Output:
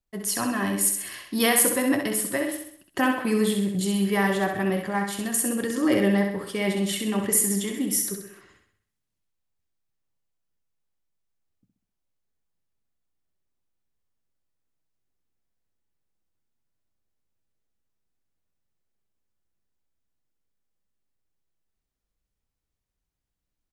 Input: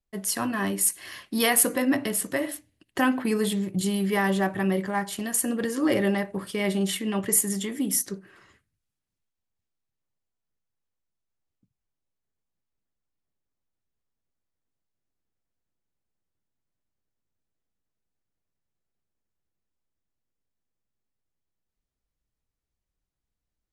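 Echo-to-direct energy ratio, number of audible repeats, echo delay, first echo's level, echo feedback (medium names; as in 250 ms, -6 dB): -4.5 dB, 5, 65 ms, -5.5 dB, 49%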